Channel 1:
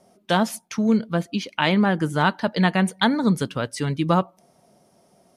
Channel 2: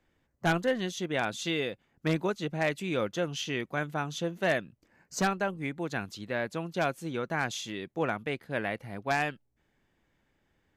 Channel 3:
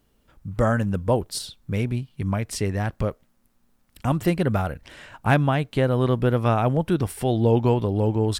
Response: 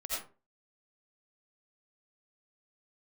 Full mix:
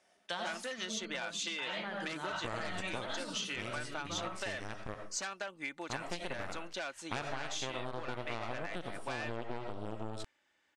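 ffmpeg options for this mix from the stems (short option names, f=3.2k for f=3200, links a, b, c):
-filter_complex "[0:a]asoftclip=type=tanh:threshold=-7.5dB,volume=-16.5dB,asplit=2[a][b];[b]volume=-3.5dB[c];[1:a]aecho=1:1:3.4:0.36,asoftclip=type=hard:threshold=-24dB,volume=-2dB,asplit=2[d][e];[2:a]aeval=exprs='0.531*(cos(1*acos(clip(val(0)/0.531,-1,1)))-cos(1*PI/2))+0.168*(cos(4*acos(clip(val(0)/0.531,-1,1)))-cos(4*PI/2))+0.0422*(cos(7*acos(clip(val(0)/0.531,-1,1)))-cos(7*PI/2))':c=same,adelay=1850,volume=-18dB,asplit=2[f][g];[g]volume=-5dB[h];[e]apad=whole_len=236564[i];[a][i]sidechaincompress=threshold=-51dB:ratio=8:attack=16:release=268[j];[j][d]amix=inputs=2:normalize=0,highpass=f=420:p=1,acompressor=threshold=-36dB:ratio=6,volume=0dB[k];[3:a]atrim=start_sample=2205[l];[c][h]amix=inputs=2:normalize=0[m];[m][l]afir=irnorm=-1:irlink=0[n];[f][k][n]amix=inputs=3:normalize=0,lowpass=f=9k:w=0.5412,lowpass=f=9k:w=1.3066,tiltshelf=f=690:g=-6,acompressor=threshold=-34dB:ratio=6"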